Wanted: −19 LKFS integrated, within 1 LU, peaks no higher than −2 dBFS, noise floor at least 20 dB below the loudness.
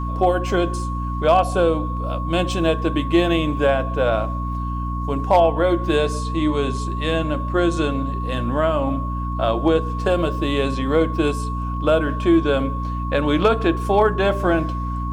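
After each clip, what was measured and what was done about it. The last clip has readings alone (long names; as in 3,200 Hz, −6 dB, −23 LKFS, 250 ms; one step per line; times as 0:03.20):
mains hum 60 Hz; hum harmonics up to 300 Hz; level of the hum −23 dBFS; interfering tone 1,100 Hz; level of the tone −29 dBFS; integrated loudness −20.5 LKFS; sample peak −5.0 dBFS; target loudness −19.0 LKFS
→ mains-hum notches 60/120/180/240/300 Hz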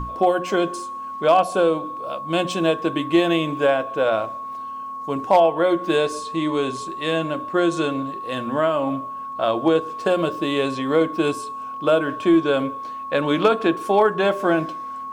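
mains hum none found; interfering tone 1,100 Hz; level of the tone −29 dBFS
→ notch filter 1,100 Hz, Q 30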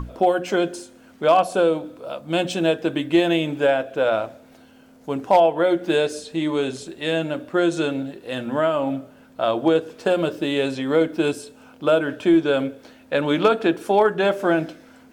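interfering tone none found; integrated loudness −21.5 LKFS; sample peak −6.0 dBFS; target loudness −19.0 LKFS
→ level +2.5 dB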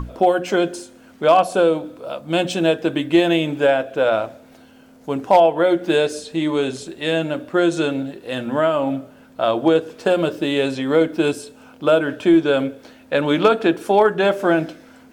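integrated loudness −19.0 LKFS; sample peak −3.5 dBFS; background noise floor −47 dBFS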